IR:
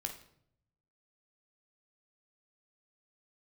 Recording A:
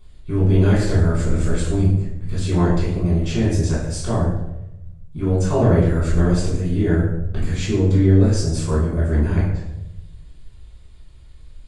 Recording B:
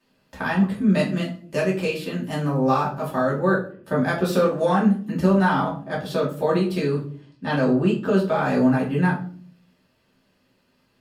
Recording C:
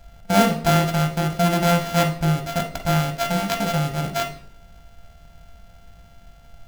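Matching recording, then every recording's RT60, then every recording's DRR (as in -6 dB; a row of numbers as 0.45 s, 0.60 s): C; 0.90 s, 0.50 s, 0.65 s; -8.5 dB, -7.0 dB, 4.0 dB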